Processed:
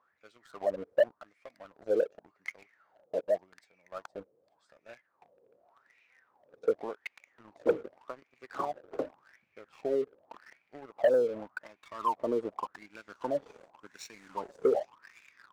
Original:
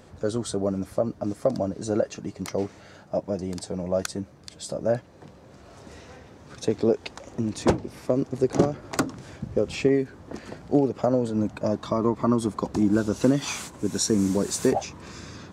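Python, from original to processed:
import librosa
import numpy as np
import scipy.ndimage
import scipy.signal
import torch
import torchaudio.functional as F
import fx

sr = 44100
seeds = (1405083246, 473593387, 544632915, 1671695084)

y = fx.wah_lfo(x, sr, hz=0.87, low_hz=450.0, high_hz=2400.0, q=10.0)
y = fx.leveller(y, sr, passes=2)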